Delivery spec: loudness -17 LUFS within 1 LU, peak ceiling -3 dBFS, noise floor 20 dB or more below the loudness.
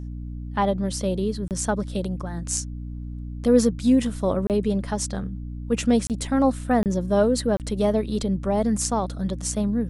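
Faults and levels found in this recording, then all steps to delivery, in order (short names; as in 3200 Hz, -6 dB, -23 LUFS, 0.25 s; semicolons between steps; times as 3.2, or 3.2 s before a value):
dropouts 5; longest dropout 28 ms; hum 60 Hz; harmonics up to 300 Hz; hum level -31 dBFS; loudness -24.0 LUFS; peak -6.5 dBFS; loudness target -17.0 LUFS
-> interpolate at 1.48/4.47/6.07/6.83/7.57, 28 ms; de-hum 60 Hz, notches 5; gain +7 dB; limiter -3 dBFS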